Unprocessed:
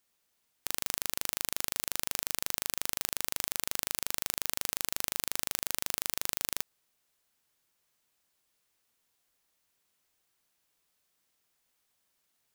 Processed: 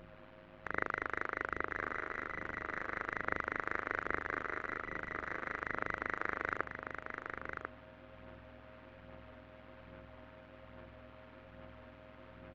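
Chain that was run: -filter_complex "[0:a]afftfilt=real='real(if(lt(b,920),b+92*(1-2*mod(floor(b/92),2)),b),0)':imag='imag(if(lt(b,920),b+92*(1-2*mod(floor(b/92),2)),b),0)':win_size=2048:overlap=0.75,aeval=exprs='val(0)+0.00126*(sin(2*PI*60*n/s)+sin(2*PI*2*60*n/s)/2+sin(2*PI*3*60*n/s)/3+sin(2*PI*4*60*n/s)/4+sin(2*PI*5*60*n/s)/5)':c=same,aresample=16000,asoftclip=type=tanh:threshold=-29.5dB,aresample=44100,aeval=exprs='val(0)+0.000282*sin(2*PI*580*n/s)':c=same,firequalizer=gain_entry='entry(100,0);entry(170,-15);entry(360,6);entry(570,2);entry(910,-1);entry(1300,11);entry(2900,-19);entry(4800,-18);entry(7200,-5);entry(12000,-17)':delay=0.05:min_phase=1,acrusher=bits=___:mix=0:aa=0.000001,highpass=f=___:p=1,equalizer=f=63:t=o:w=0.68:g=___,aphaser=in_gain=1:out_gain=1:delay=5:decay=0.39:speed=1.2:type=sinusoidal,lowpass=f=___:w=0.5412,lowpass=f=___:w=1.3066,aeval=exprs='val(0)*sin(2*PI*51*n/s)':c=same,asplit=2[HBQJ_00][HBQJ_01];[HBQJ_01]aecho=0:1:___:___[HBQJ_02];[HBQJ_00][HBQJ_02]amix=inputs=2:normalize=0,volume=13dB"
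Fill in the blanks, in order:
10, 43, -15, 3k, 3k, 1044, 0.501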